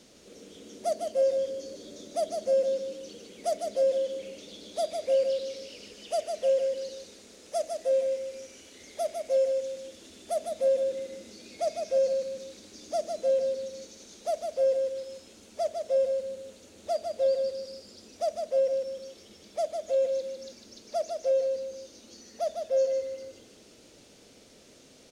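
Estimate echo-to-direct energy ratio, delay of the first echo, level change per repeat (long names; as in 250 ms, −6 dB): −4.5 dB, 152 ms, −8.0 dB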